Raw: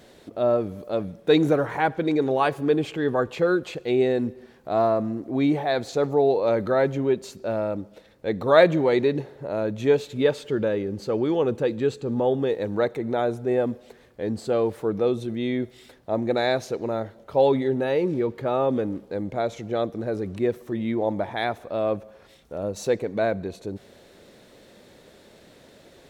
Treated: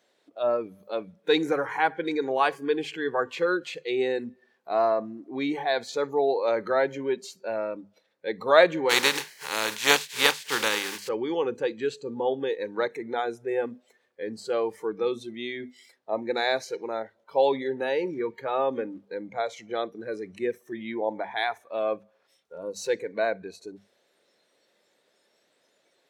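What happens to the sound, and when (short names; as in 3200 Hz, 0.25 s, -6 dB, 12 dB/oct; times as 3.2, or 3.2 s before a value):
8.89–11.07 spectral contrast lowered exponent 0.37
whole clip: notches 50/100/150/200/250 Hz; spectral noise reduction 15 dB; weighting filter A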